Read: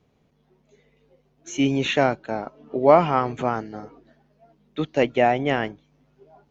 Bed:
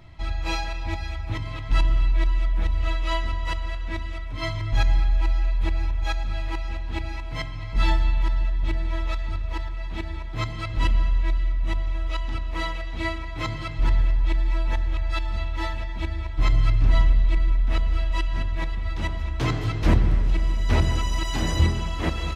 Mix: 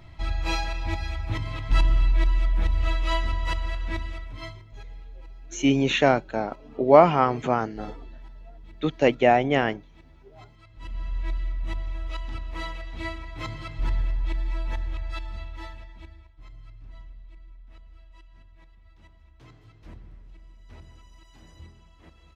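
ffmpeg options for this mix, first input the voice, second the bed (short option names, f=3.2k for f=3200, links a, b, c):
-filter_complex "[0:a]adelay=4050,volume=0.5dB[a];[1:a]volume=17dB,afade=t=out:st=3.92:d=0.73:silence=0.0749894,afade=t=in:st=10.79:d=0.52:silence=0.141254,afade=t=out:st=14.83:d=1.53:silence=0.0841395[b];[a][b]amix=inputs=2:normalize=0"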